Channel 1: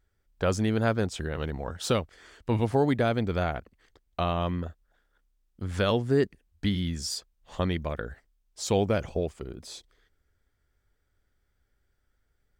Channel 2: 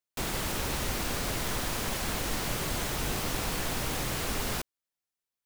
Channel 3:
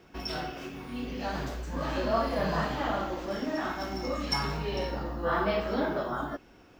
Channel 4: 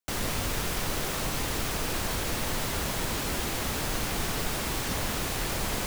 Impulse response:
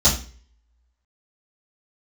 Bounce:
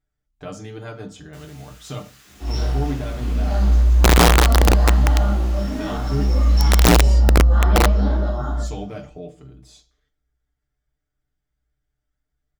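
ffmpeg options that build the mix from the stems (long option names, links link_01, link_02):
-filter_complex "[0:a]aecho=1:1:6.7:0.89,volume=-11dB,asplit=3[link_01][link_02][link_03];[link_02]volume=-21.5dB[link_04];[1:a]lowpass=frequency=2100:poles=1,lowshelf=frequency=450:gain=3,aeval=exprs='0.0355*(abs(mod(val(0)/0.0355+3,4)-2)-1)':channel_layout=same,adelay=2300,volume=-5.5dB[link_05];[2:a]flanger=delay=15.5:depth=6.1:speed=2.2,adelay=2250,volume=-12dB,asplit=2[link_06][link_07];[link_07]volume=-3dB[link_08];[3:a]highpass=frequency=1200:width=0.5412,highpass=frequency=1200:width=1.3066,alimiter=level_in=3dB:limit=-24dB:level=0:latency=1,volume=-3dB,flanger=delay=16.5:depth=6.2:speed=1.8,adelay=1250,volume=-13dB,asplit=2[link_09][link_10];[link_10]volume=-20.5dB[link_11];[link_03]apad=whole_len=399014[link_12];[link_06][link_12]sidechaincompress=threshold=-46dB:ratio=8:attack=36:release=188[link_13];[4:a]atrim=start_sample=2205[link_14];[link_04][link_08][link_11]amix=inputs=3:normalize=0[link_15];[link_15][link_14]afir=irnorm=-1:irlink=0[link_16];[link_01][link_05][link_13][link_09][link_16]amix=inputs=5:normalize=0,aeval=exprs='(mod(2.37*val(0)+1,2)-1)/2.37':channel_layout=same"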